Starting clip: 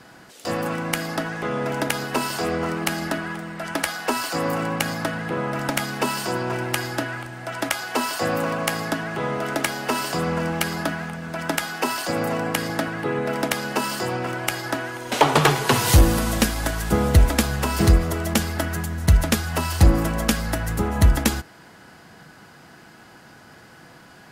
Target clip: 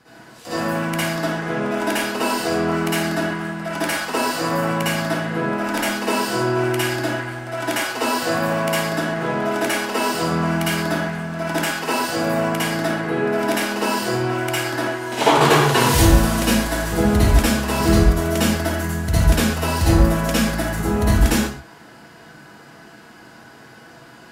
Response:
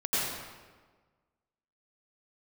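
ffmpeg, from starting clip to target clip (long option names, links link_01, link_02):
-filter_complex "[1:a]atrim=start_sample=2205,afade=type=out:start_time=0.39:duration=0.01,atrim=end_sample=17640,asetrate=70560,aresample=44100[link_01];[0:a][link_01]afir=irnorm=-1:irlink=0,volume=-2.5dB"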